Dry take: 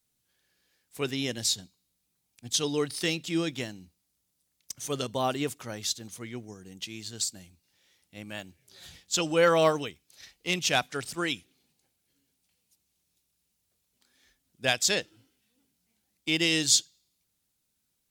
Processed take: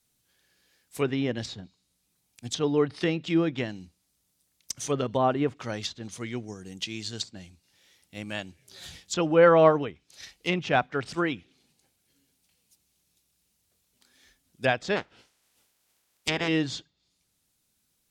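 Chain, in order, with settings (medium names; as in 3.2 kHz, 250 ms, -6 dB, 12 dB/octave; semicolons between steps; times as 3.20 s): 14.95–16.47 s: spectral peaks clipped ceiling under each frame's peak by 25 dB; low-pass that closes with the level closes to 1.6 kHz, closed at -27 dBFS; trim +5 dB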